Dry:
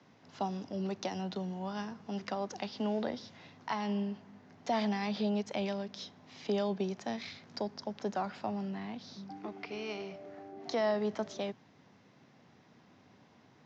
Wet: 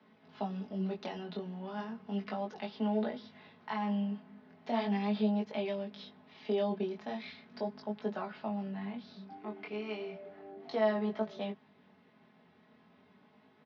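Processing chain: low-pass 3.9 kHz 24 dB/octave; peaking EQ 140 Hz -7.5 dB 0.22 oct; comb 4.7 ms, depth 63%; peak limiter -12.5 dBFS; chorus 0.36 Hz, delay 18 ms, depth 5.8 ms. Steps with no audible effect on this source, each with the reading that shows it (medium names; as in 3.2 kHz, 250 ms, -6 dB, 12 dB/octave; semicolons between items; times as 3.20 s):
peak limiter -12.5 dBFS: peak at its input -17.0 dBFS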